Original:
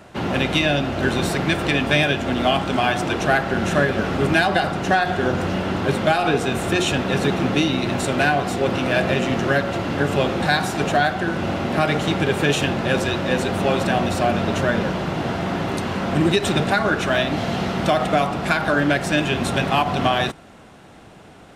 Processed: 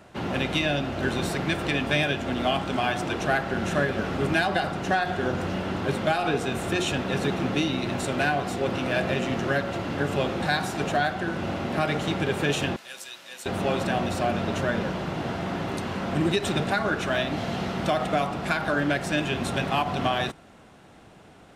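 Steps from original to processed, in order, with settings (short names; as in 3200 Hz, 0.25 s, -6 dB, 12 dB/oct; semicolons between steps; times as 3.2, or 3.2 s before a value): 12.76–13.46 differentiator; gain -6 dB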